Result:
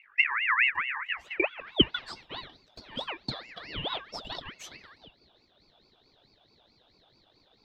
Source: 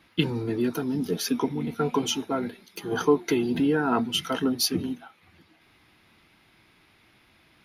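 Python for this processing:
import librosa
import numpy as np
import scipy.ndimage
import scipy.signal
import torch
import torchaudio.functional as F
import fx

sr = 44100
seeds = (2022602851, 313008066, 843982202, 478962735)

y = fx.small_body(x, sr, hz=(210.0, 510.0, 1000.0, 1400.0), ring_ms=45, db=16)
y = fx.dmg_buzz(y, sr, base_hz=50.0, harmonics=4, level_db=-37.0, tilt_db=-4, odd_only=False)
y = fx.filter_sweep_bandpass(y, sr, from_hz=340.0, to_hz=2100.0, start_s=0.68, end_s=2.09, q=7.2)
y = fx.ring_lfo(y, sr, carrier_hz=1900.0, swing_pct=30, hz=4.6)
y = F.gain(torch.from_numpy(y), 5.0).numpy()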